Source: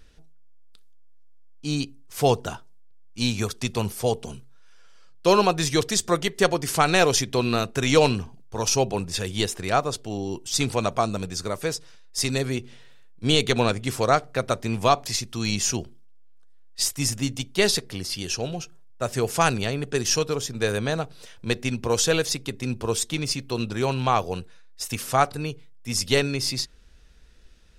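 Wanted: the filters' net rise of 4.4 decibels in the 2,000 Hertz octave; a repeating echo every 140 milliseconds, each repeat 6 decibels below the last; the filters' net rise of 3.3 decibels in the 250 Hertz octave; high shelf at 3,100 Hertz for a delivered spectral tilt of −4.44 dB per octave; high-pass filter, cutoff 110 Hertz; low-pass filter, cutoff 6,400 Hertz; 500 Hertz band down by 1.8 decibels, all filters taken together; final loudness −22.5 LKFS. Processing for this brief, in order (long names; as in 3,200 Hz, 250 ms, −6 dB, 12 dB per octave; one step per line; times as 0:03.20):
high-pass filter 110 Hz
low-pass filter 6,400 Hz
parametric band 250 Hz +5.5 dB
parametric band 500 Hz −4 dB
parametric band 2,000 Hz +7.5 dB
high-shelf EQ 3,100 Hz −4 dB
repeating echo 140 ms, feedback 50%, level −6 dB
level +0.5 dB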